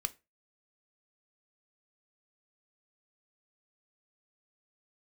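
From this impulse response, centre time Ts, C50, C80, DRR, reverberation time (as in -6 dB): 3 ms, 22.0 dB, 29.5 dB, 10.5 dB, 0.25 s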